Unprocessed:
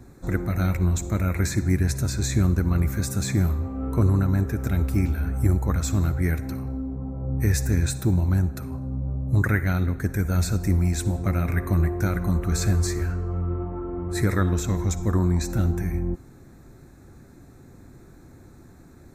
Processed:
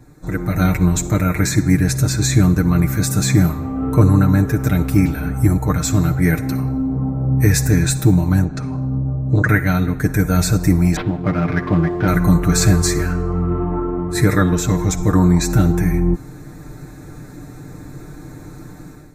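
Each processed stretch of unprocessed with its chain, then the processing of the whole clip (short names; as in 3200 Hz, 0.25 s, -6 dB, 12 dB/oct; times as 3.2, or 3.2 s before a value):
8.44–9.49 LPF 6900 Hz 24 dB/oct + core saturation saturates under 240 Hz
10.96–12.08 HPF 160 Hz 6 dB/oct + sample-rate reducer 7600 Hz, jitter 20% + air absorption 360 m
whole clip: comb 6.6 ms, depth 72%; AGC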